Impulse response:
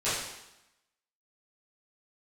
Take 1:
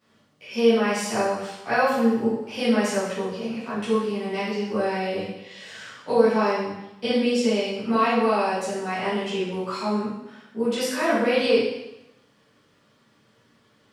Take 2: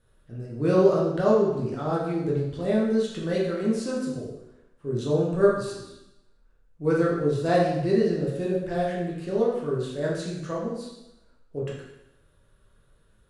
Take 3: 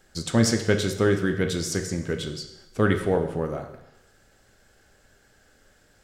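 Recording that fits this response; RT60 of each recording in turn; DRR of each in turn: 1; 0.90 s, 0.90 s, 0.90 s; -14.0 dB, -5.0 dB, 4.5 dB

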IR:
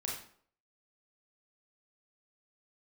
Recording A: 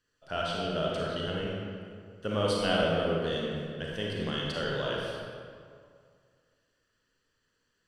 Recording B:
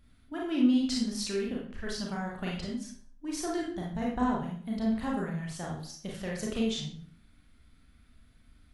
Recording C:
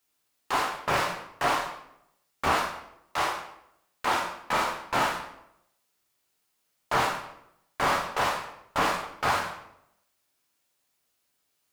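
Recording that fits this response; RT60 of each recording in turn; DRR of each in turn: B; 2.2 s, 0.55 s, 0.75 s; -4.0 dB, -3.5 dB, -0.5 dB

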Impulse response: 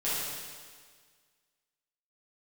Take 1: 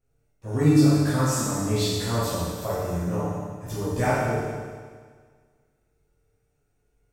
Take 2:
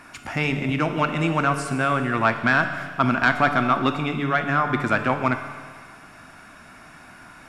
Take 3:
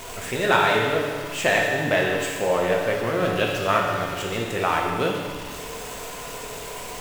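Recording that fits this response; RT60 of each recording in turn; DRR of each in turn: 1; 1.7 s, 1.7 s, 1.7 s; -11.5 dB, 6.5 dB, -2.0 dB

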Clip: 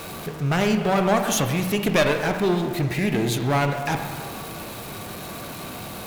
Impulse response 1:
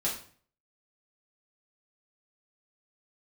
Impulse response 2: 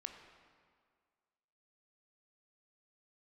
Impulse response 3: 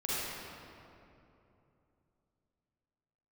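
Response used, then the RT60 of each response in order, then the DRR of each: 2; 0.45 s, 1.9 s, 2.9 s; -6.0 dB, 4.5 dB, -9.5 dB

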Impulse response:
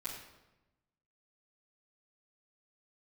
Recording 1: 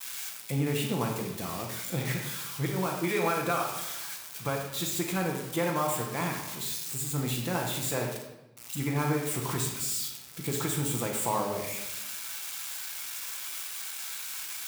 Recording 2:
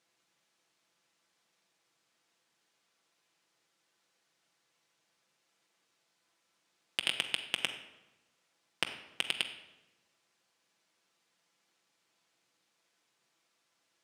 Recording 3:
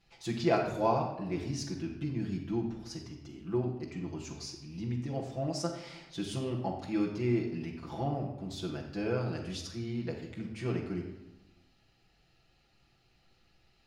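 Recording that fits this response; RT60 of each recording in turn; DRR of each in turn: 1; 1.0 s, 1.0 s, 1.0 s; -13.5 dB, 3.0 dB, -4.0 dB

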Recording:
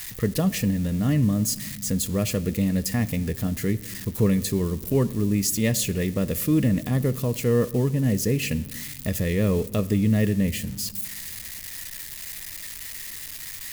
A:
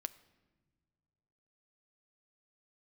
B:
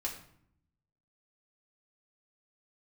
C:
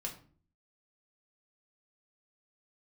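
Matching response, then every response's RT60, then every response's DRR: A; no single decay rate, 0.65 s, 0.45 s; 12.0 dB, -2.5 dB, -0.5 dB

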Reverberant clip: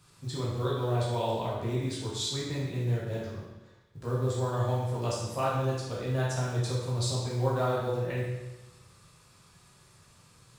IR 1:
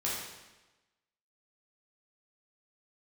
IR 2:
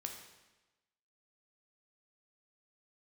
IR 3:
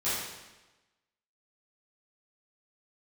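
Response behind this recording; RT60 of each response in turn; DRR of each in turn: 1; 1.1 s, 1.1 s, 1.1 s; -7.0 dB, 2.5 dB, -14.0 dB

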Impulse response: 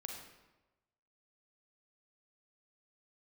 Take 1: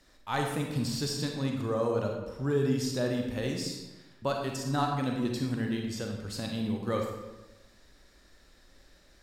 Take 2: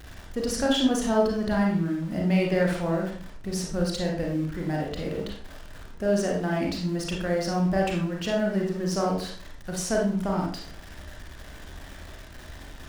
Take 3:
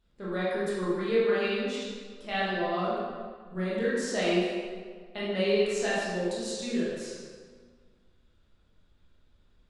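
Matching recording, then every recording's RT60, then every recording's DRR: 1; 1.1 s, 0.45 s, 1.7 s; 1.0 dB, -1.5 dB, -8.5 dB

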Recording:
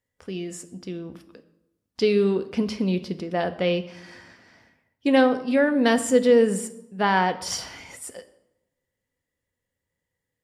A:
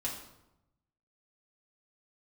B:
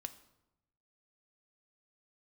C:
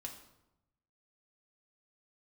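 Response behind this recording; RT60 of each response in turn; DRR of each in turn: B; 0.90 s, 0.90 s, 0.90 s; -4.5 dB, 9.0 dB, 1.0 dB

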